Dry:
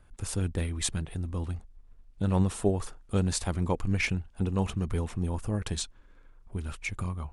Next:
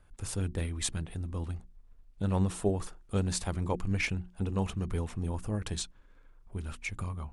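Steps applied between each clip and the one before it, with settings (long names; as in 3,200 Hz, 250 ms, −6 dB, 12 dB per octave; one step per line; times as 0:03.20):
mains-hum notches 60/120/180/240/300/360 Hz
level −2.5 dB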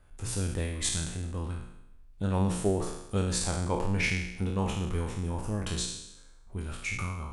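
peak hold with a decay on every bin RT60 0.85 s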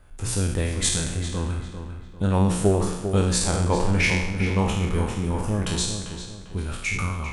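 feedback echo with a low-pass in the loop 397 ms, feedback 37%, low-pass 3,800 Hz, level −8.5 dB
level +7 dB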